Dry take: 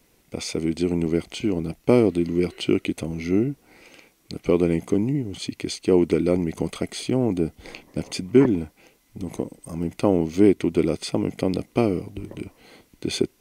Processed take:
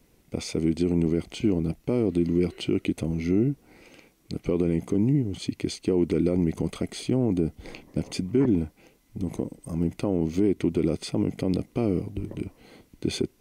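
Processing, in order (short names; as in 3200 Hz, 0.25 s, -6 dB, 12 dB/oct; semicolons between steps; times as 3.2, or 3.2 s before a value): low shelf 430 Hz +8 dB; limiter -9 dBFS, peak gain reduction 10.5 dB; gain -4.5 dB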